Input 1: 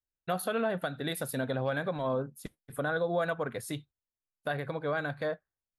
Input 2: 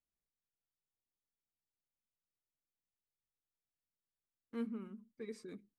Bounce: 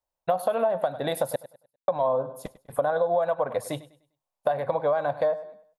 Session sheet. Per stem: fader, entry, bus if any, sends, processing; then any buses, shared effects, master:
+2.5 dB, 0.00 s, muted 0:01.36–0:01.88, no send, echo send −18 dB, flat-topped bell 740 Hz +15 dB 1.3 octaves
−15.5 dB, 0.00 s, no send, no echo send, no processing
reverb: not used
echo: repeating echo 100 ms, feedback 31%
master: downward compressor 6 to 1, threshold −21 dBFS, peak gain reduction 11.5 dB

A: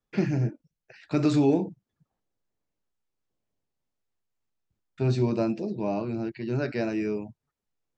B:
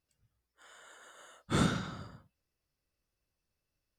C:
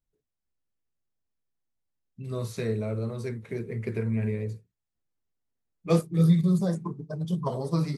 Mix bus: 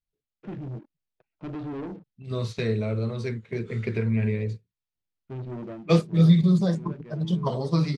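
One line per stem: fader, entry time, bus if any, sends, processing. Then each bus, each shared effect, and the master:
−17.0 dB, 0.30 s, no send, adaptive Wiener filter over 25 samples; low-pass filter 3,100 Hz 24 dB per octave; leveller curve on the samples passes 3; automatic ducking −8 dB, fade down 0.20 s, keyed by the third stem
−19.0 dB, 2.15 s, no send, high-pass filter 1,300 Hz
+0.5 dB, 0.00 s, no send, low-shelf EQ 360 Hz +3.5 dB; noise gate −33 dBFS, range −10 dB; parametric band 3,400 Hz +8.5 dB 1.8 octaves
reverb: not used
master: low-pass filter 5,900 Hz 12 dB per octave

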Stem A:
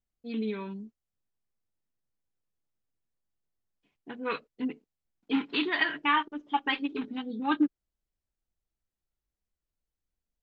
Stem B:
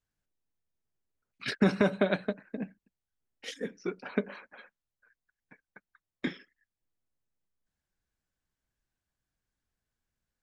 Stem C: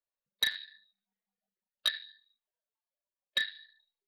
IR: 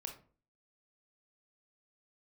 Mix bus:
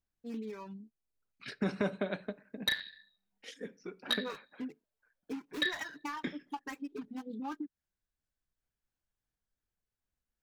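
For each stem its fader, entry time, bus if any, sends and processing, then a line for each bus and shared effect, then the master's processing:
−2.5 dB, 0.00 s, no send, running median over 15 samples; reverb reduction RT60 0.94 s; downward compressor 16 to 1, threshold −34 dBFS, peak gain reduction 15 dB
−6.0 dB, 0.00 s, send −11.5 dB, amplitude modulation by smooth noise, depth 55%
−1.0 dB, 2.25 s, send −9 dB, tilt shelving filter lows +5 dB, about 1,500 Hz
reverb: on, RT60 0.40 s, pre-delay 22 ms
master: no processing

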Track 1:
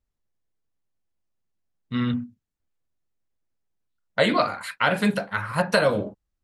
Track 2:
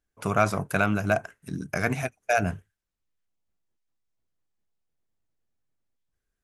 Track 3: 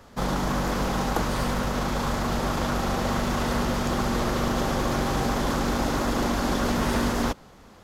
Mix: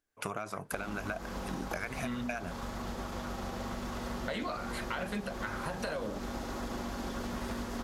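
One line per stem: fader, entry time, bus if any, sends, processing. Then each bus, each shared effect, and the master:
−4.5 dB, 0.10 s, no send, high-pass filter 150 Hz; brickwall limiter −14 dBFS, peak gain reduction 8 dB
0.0 dB, 0.00 s, no send, low-shelf EQ 220 Hz −10.5 dB; downward compressor, threshold −28 dBFS, peak gain reduction 11 dB; auto-filter bell 2.4 Hz 250–2,700 Hz +6 dB
−9.0 dB, 0.55 s, no send, notch comb filter 150 Hz; expander for the loud parts 1.5 to 1, over −42 dBFS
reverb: not used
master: downward compressor, threshold −33 dBFS, peak gain reduction 9.5 dB

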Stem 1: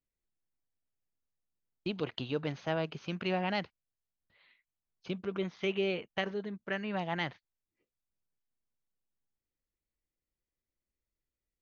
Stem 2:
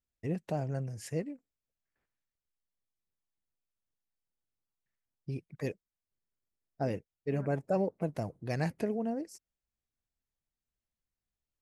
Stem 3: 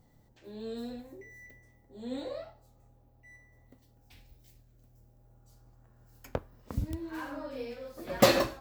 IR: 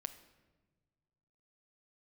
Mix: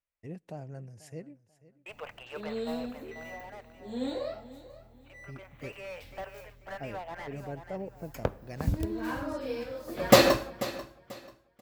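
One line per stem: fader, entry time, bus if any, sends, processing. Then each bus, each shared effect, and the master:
0:02.59 −1 dB → 0:02.87 −11.5 dB → 0:05.12 −11.5 dB → 0:05.74 −4 dB, 0.00 s, send −3.5 dB, echo send −5.5 dB, elliptic band-pass filter 560–2,700 Hz; slew-rate limiting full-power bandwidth 15 Hz
−8.5 dB, 0.00 s, send −23 dB, echo send −18 dB, no processing
+1.0 dB, 1.90 s, send −4 dB, echo send −13 dB, no processing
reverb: on, pre-delay 7 ms
echo: repeating echo 489 ms, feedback 28%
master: no processing

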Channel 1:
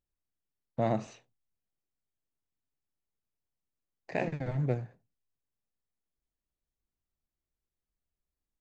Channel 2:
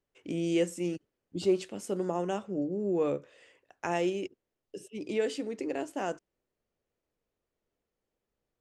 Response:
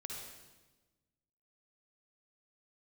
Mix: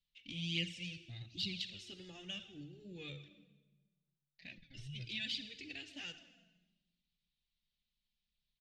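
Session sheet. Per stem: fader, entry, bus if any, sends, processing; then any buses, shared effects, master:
−8.5 dB, 0.30 s, send −14.5 dB, reverb reduction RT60 0.51 s
−0.5 dB, 0.00 s, muted 0:03.28–0:04.46, send −3.5 dB, de-essing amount 100%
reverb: on, RT60 1.2 s, pre-delay 48 ms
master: drawn EQ curve 110 Hz 0 dB, 240 Hz −11 dB, 400 Hz −29 dB, 650 Hz −25 dB, 990 Hz −30 dB, 2,000 Hz −4 dB, 3,800 Hz +12 dB, 7,900 Hz −15 dB, 12,000 Hz −22 dB; flanger swept by the level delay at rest 5.1 ms, full sweep at −28.5 dBFS

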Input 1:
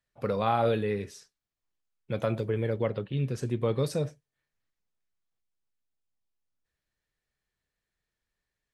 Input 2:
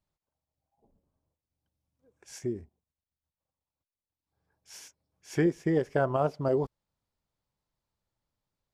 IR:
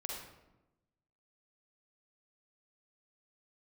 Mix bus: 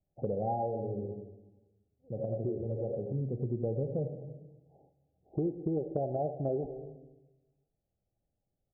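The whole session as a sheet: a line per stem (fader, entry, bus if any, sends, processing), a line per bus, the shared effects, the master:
+1.5 dB, 0.00 s, send −7.5 dB, echo send −10 dB, noise gate with hold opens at −47 dBFS; automatic ducking −16 dB, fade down 0.30 s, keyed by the second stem
+1.5 dB, 0.00 s, send −8.5 dB, no echo send, no processing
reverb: on, RT60 1.0 s, pre-delay 40 ms
echo: single-tap delay 88 ms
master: Chebyshev low-pass filter 820 Hz, order 10; downward compressor 3 to 1, threshold −32 dBFS, peak gain reduction 11 dB

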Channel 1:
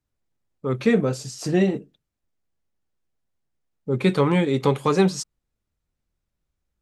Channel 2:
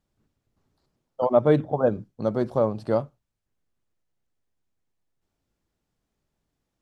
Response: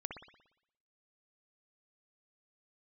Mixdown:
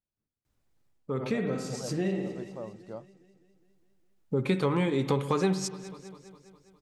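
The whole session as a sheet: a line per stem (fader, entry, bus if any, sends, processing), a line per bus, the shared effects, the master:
+2.0 dB, 0.45 s, send −5.5 dB, echo send −23 dB, automatic ducking −19 dB, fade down 0.30 s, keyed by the second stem
−18.5 dB, 0.00 s, no send, no echo send, no processing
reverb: on, pre-delay 58 ms
echo: repeating echo 204 ms, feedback 60%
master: downward compressor 2.5 to 1, threshold −29 dBFS, peak gain reduction 14 dB

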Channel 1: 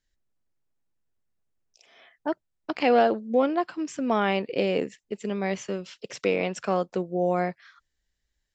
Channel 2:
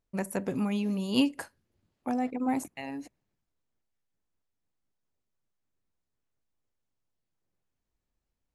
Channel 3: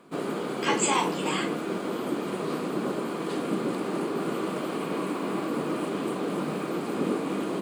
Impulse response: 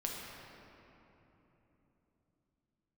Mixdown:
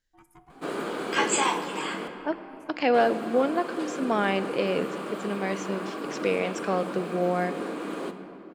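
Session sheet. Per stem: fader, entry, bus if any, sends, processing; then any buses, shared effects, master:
−3.0 dB, 0.00 s, send −12 dB, no processing
−19.5 dB, 0.00 s, send −8.5 dB, ring modulation 530 Hz; barber-pole flanger 2.3 ms +2.1 Hz
−0.5 dB, 0.50 s, muted 0:02.08–0:02.94, send −9.5 dB, high-pass filter 370 Hz 6 dB per octave; high-shelf EQ 10,000 Hz −4.5 dB; automatic ducking −7 dB, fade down 0.35 s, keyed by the first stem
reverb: on, RT60 3.5 s, pre-delay 6 ms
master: parametric band 1,600 Hz +4.5 dB 0.26 octaves

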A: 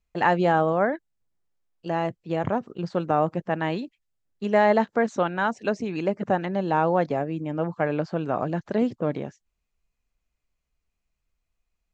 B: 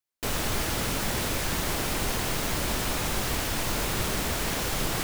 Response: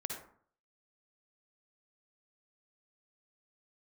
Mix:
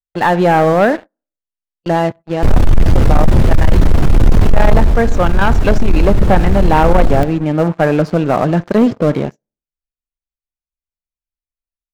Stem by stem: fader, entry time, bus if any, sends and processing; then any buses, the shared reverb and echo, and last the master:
−4.0 dB, 0.00 s, send −15.5 dB, low-shelf EQ 110 Hz +5.5 dB
0:04.72 −2 dB → 0:05.01 −13.5 dB, 2.20 s, send −9 dB, spectral tilt −4.5 dB per octave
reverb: on, RT60 0.55 s, pre-delay 48 ms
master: noise gate −41 dBFS, range −18 dB; automatic gain control gain up to 5 dB; leveller curve on the samples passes 3

